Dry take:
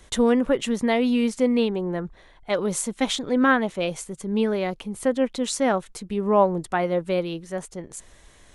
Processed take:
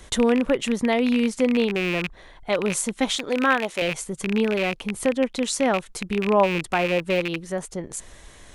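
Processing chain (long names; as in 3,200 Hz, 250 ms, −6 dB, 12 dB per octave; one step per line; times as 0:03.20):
loose part that buzzes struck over −33 dBFS, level −17 dBFS
0:03.16–0:03.82: bass and treble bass −12 dB, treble +5 dB
in parallel at +3 dB: downward compressor, threshold −33 dBFS, peak gain reduction 19 dB
on the sum: level −2 dB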